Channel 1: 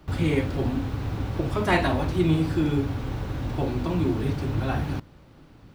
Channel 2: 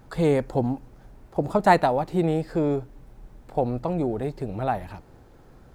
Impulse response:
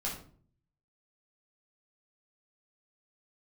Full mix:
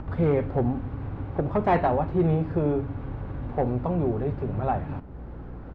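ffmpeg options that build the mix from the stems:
-filter_complex "[0:a]volume=0.473,asplit=2[s0][s1];[s1]volume=0.178[s2];[1:a]aeval=exprs='val(0)+0.00447*(sin(2*PI*60*n/s)+sin(2*PI*2*60*n/s)/2+sin(2*PI*3*60*n/s)/3+sin(2*PI*4*60*n/s)/4+sin(2*PI*5*60*n/s)/5)':c=same,volume=6.31,asoftclip=hard,volume=0.158,adelay=2.8,volume=0.841[s3];[2:a]atrim=start_sample=2205[s4];[s2][s4]afir=irnorm=-1:irlink=0[s5];[s0][s3][s5]amix=inputs=3:normalize=0,acompressor=mode=upward:threshold=0.0398:ratio=2.5,lowpass=1600"

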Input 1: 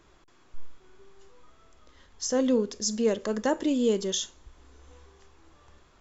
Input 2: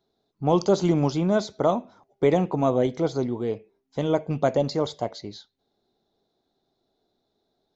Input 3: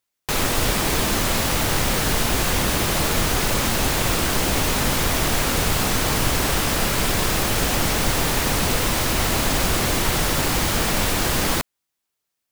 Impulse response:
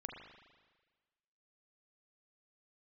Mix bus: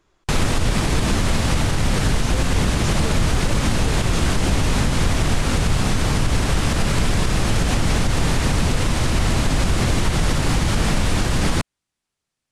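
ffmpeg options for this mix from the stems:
-filter_complex "[0:a]volume=0.562[s0];[2:a]lowpass=f=10000:w=0.5412,lowpass=f=10000:w=1.3066,bass=f=250:g=9,treble=f=4000:g=-2,volume=1.19[s1];[s0][s1]amix=inputs=2:normalize=0,alimiter=limit=0.355:level=0:latency=1:release=117"

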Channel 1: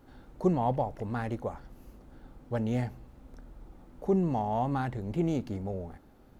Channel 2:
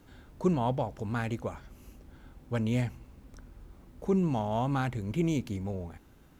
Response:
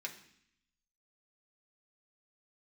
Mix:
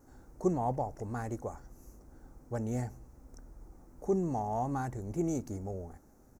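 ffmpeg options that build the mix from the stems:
-filter_complex "[0:a]volume=0.668[s0];[1:a]highshelf=f=4200:t=q:w=3:g=13,adelay=2.4,volume=0.158[s1];[s0][s1]amix=inputs=2:normalize=0,equalizer=f=3200:w=1.5:g=-13.5"

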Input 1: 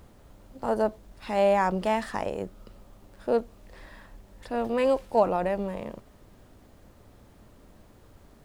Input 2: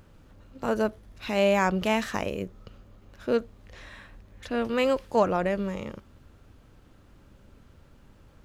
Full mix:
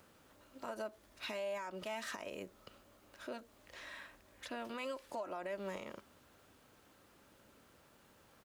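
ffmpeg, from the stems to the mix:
-filter_complex "[0:a]highshelf=f=4000:g=9,volume=0.237[s0];[1:a]acompressor=threshold=0.0447:ratio=6,adelay=3,volume=0.75[s1];[s0][s1]amix=inputs=2:normalize=0,highpass=f=560:p=1,alimiter=level_in=2.82:limit=0.0631:level=0:latency=1:release=167,volume=0.355"

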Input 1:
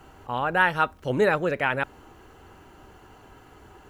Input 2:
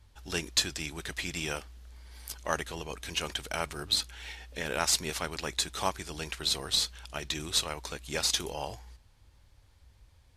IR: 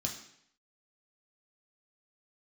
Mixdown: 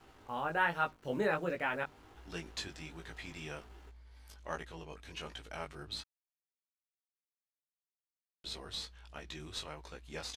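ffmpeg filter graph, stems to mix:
-filter_complex "[0:a]bandreject=f=50:t=h:w=6,bandreject=f=100:t=h:w=6,bandreject=f=150:t=h:w=6,acrusher=bits=7:mix=0:aa=0.5,volume=0.447[s0];[1:a]highshelf=f=4200:g=-10.5,adelay=2000,volume=0.531,asplit=3[s1][s2][s3];[s1]atrim=end=6.02,asetpts=PTS-STARTPTS,afade=t=out:st=6.016:d=0.004:c=hsin[s4];[s2]atrim=start=6.02:end=8.44,asetpts=PTS-STARTPTS,volume=0[s5];[s3]atrim=start=8.44,asetpts=PTS-STARTPTS,afade=t=in:d=0.004:c=hsin[s6];[s4][s5][s6]concat=n=3:v=0:a=1[s7];[s0][s7]amix=inputs=2:normalize=0,highshelf=f=9200:g=-4.5,flanger=delay=17.5:depth=2.7:speed=1.3"

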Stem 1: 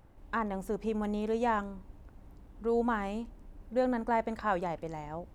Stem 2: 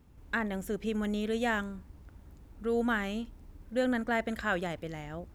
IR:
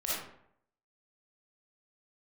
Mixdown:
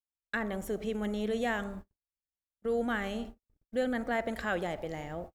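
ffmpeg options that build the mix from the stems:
-filter_complex "[0:a]alimiter=level_in=1.41:limit=0.0631:level=0:latency=1,volume=0.708,volume=0.316,asplit=3[s0][s1][s2];[s1]volume=0.596[s3];[1:a]volume=-1,adelay=0.5,volume=1.06[s4];[s2]apad=whole_len=235803[s5];[s4][s5]sidechaincompress=threshold=0.00708:ratio=8:attack=6:release=104[s6];[2:a]atrim=start_sample=2205[s7];[s3][s7]afir=irnorm=-1:irlink=0[s8];[s0][s6][s8]amix=inputs=3:normalize=0,agate=range=0.00141:threshold=0.00891:ratio=16:detection=peak,bandreject=f=1000:w=6.7"

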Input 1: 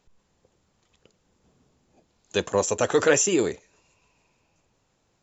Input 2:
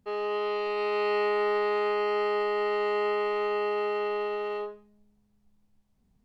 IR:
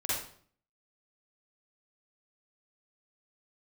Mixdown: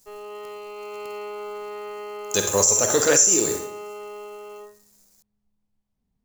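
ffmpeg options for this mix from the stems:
-filter_complex "[0:a]acrusher=bits=9:dc=4:mix=0:aa=0.000001,aexciter=amount=8.1:drive=3.3:freq=4500,volume=0.794,asplit=2[s0][s1];[s1]volume=0.398[s2];[1:a]bandreject=f=374.1:t=h:w=4,bandreject=f=748.2:t=h:w=4,bandreject=f=1122.3:t=h:w=4,bandreject=f=1496.4:t=h:w=4,bandreject=f=1870.5:t=h:w=4,bandreject=f=2244.6:t=h:w=4,bandreject=f=2618.7:t=h:w=4,bandreject=f=2992.8:t=h:w=4,bandreject=f=3366.9:t=h:w=4,bandreject=f=3741:t=h:w=4,bandreject=f=4115.1:t=h:w=4,bandreject=f=4489.2:t=h:w=4,bandreject=f=4863.3:t=h:w=4,bandreject=f=5237.4:t=h:w=4,bandreject=f=5611.5:t=h:w=4,bandreject=f=5985.6:t=h:w=4,bandreject=f=6359.7:t=h:w=4,bandreject=f=6733.8:t=h:w=4,bandreject=f=7107.9:t=h:w=4,bandreject=f=7482:t=h:w=4,bandreject=f=7856.1:t=h:w=4,bandreject=f=8230.2:t=h:w=4,bandreject=f=8604.3:t=h:w=4,bandreject=f=8978.4:t=h:w=4,bandreject=f=9352.5:t=h:w=4,bandreject=f=9726.6:t=h:w=4,bandreject=f=10100.7:t=h:w=4,bandreject=f=10474.8:t=h:w=4,bandreject=f=10848.9:t=h:w=4,bandreject=f=11223:t=h:w=4,bandreject=f=11597.1:t=h:w=4,bandreject=f=11971.2:t=h:w=4,bandreject=f=12345.3:t=h:w=4,bandreject=f=12719.4:t=h:w=4,bandreject=f=13093.5:t=h:w=4,bandreject=f=13467.6:t=h:w=4,volume=0.422[s3];[2:a]atrim=start_sample=2205[s4];[s2][s4]afir=irnorm=-1:irlink=0[s5];[s0][s3][s5]amix=inputs=3:normalize=0,alimiter=limit=0.473:level=0:latency=1:release=176"

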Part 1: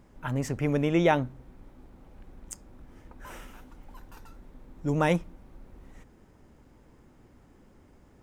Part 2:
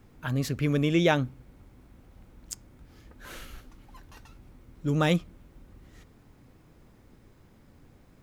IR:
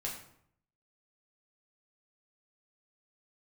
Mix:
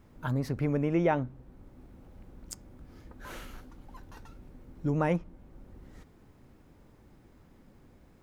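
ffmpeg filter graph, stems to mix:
-filter_complex "[0:a]lowpass=f=1900:p=1,volume=0.631,asplit=2[s0][s1];[1:a]acompressor=threshold=0.0447:ratio=6,volume=0.631[s2];[s1]apad=whole_len=362788[s3];[s2][s3]sidechaincompress=threshold=0.0224:ratio=8:attack=29:release=824[s4];[s0][s4]amix=inputs=2:normalize=0"

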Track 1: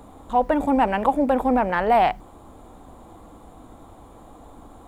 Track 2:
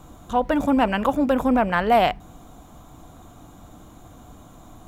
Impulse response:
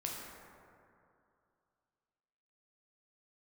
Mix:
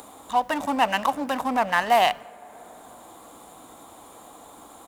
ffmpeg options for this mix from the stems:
-filter_complex "[0:a]highshelf=f=3300:g=11,volume=0.447,asplit=2[s0][s1];[1:a]aemphasis=mode=production:type=75kf,adynamicsmooth=sensitivity=7.5:basefreq=990,adelay=0.7,volume=0.75,asplit=2[s2][s3];[s3]volume=0.126[s4];[s1]apad=whole_len=214989[s5];[s2][s5]sidechaingate=range=0.0224:threshold=0.00631:ratio=16:detection=peak[s6];[2:a]atrim=start_sample=2205[s7];[s4][s7]afir=irnorm=-1:irlink=0[s8];[s0][s6][s8]amix=inputs=3:normalize=0,highpass=f=570:p=1,acompressor=mode=upward:threshold=0.0158:ratio=2.5"

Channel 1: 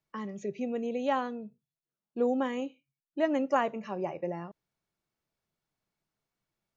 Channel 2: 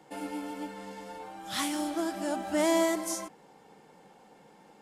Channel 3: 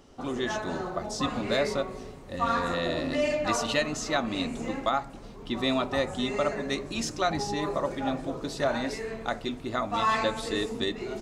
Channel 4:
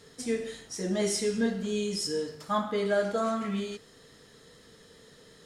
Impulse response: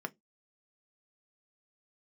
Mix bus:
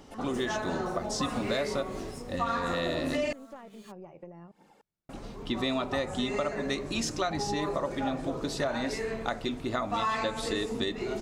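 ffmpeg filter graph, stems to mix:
-filter_complex "[0:a]lowshelf=f=290:g=9,volume=0.473,asplit=2[s0][s1];[1:a]aphaser=in_gain=1:out_gain=1:delay=4.4:decay=0.5:speed=1.3:type=triangular,volume=0.708[s2];[2:a]volume=1.33,asplit=3[s3][s4][s5];[s3]atrim=end=3.33,asetpts=PTS-STARTPTS,afade=t=out:st=3.326:d=0.004:c=hsin[s6];[s4]atrim=start=3.33:end=5.09,asetpts=PTS-STARTPTS,volume=0[s7];[s5]atrim=start=5.09,asetpts=PTS-STARTPTS,afade=t=in:d=0.004:c=hsin[s8];[s6][s7][s8]concat=n=3:v=0:a=1[s9];[3:a]aemphasis=mode=production:type=50fm,acrusher=bits=5:mix=0:aa=0.5,adelay=150,volume=0.224[s10];[s1]apad=whole_len=212232[s11];[s2][s11]sidechaincompress=threshold=0.00158:ratio=8:attack=5.9:release=131[s12];[s0][s12][s10]amix=inputs=3:normalize=0,aeval=exprs='(tanh(12.6*val(0)+0.5)-tanh(0.5))/12.6':c=same,acompressor=threshold=0.00794:ratio=8,volume=1[s13];[s9][s13]amix=inputs=2:normalize=0,acompressor=threshold=0.0447:ratio=4"

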